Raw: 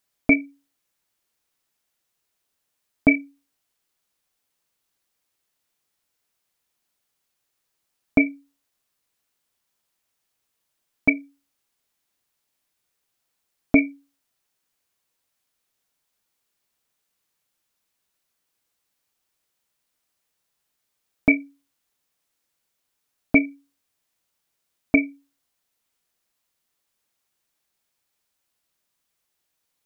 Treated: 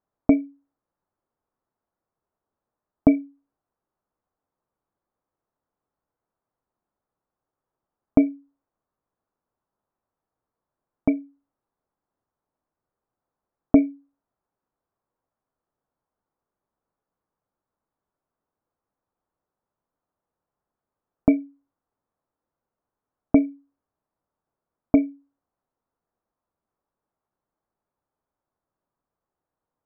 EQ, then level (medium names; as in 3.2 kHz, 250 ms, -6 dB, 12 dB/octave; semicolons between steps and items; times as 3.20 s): low-pass 1.2 kHz 24 dB/octave; +2.0 dB